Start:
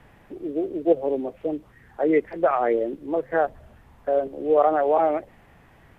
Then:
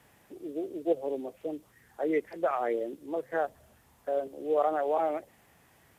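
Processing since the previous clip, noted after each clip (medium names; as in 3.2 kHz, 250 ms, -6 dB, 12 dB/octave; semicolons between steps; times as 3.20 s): high-pass 68 Hz; tone controls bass -3 dB, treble +15 dB; trim -8 dB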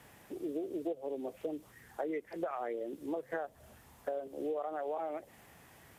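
compression 16:1, threshold -37 dBFS, peak gain reduction 17 dB; trim +3.5 dB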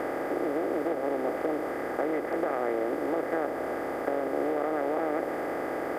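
spectral levelling over time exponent 0.2; trim +1 dB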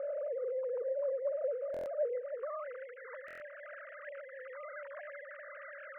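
formants replaced by sine waves; band-pass sweep 650 Hz -> 1.7 kHz, 2.11–2.96 s; buffer glitch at 1.72/3.26 s, samples 1024, times 5; trim -3 dB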